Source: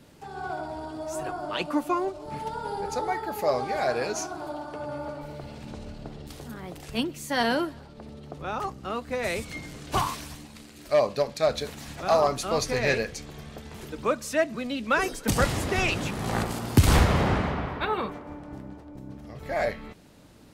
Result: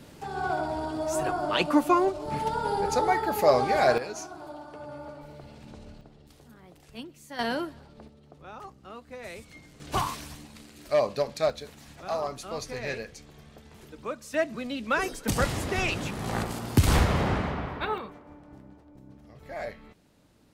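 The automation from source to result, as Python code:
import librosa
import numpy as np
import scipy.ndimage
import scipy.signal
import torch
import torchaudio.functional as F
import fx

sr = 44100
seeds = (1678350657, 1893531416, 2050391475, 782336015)

y = fx.gain(x, sr, db=fx.steps((0.0, 4.5), (3.98, -6.5), (6.01, -13.0), (7.39, -4.5), (8.08, -12.0), (9.8, -2.0), (11.5, -9.0), (14.34, -2.5), (17.98, -9.0)))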